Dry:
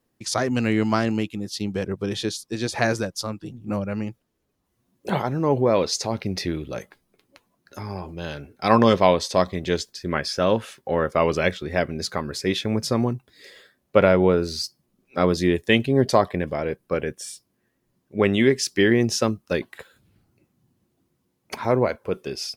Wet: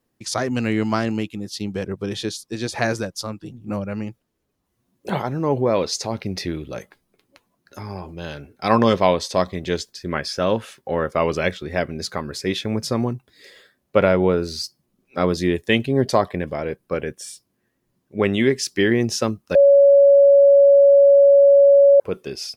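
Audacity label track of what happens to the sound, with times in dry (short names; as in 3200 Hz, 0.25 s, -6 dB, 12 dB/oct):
19.550000	22.000000	bleep 561 Hz -8 dBFS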